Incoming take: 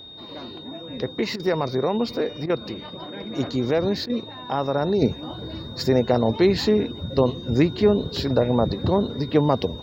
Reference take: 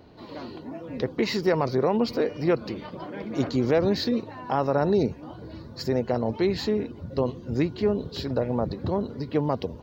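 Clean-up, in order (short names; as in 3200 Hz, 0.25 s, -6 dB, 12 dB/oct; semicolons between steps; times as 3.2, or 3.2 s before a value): notch 3700 Hz, Q 30; interpolate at 1.36/2.46/4.06, 35 ms; gain correction -6 dB, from 5.02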